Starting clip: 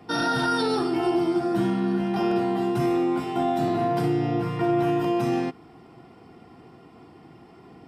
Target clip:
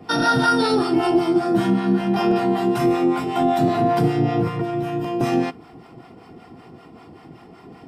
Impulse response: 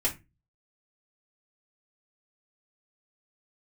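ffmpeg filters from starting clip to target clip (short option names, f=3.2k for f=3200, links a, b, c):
-filter_complex "[0:a]acrossover=split=630[a][b];[a]aeval=exprs='val(0)*(1-0.7/2+0.7/2*cos(2*PI*5.2*n/s))':c=same[c];[b]aeval=exprs='val(0)*(1-0.7/2-0.7/2*cos(2*PI*5.2*n/s))':c=same[d];[c][d]amix=inputs=2:normalize=0,asettb=1/sr,asplit=3[e][f][g];[e]atrim=end=4.474[h];[f]atrim=start=4.47:end=5.21,asetpts=PTS-STARTPTS,afade=t=in:d=0.004:c=qsin,afade=t=out:st=0.736:d=0.004:c=qsin,acrossover=split=330|2500[i][j][k];[i]acompressor=threshold=-33dB:ratio=4[l];[j]acompressor=threshold=-37dB:ratio=4[m];[k]acompressor=threshold=-55dB:ratio=4[n];[l][m][n]amix=inputs=3:normalize=0[o];[g]atrim=start=5.206[p];[h][o]acrossfade=d=0.004:c1=hsin:c2=qsin[q];[q][p]acrossfade=d=0.004:c1=qsin:c2=hsin,asplit=2[r][s];[1:a]atrim=start_sample=2205[t];[s][t]afir=irnorm=-1:irlink=0,volume=-27.5dB[u];[r][u]amix=inputs=2:normalize=0,volume=8.5dB"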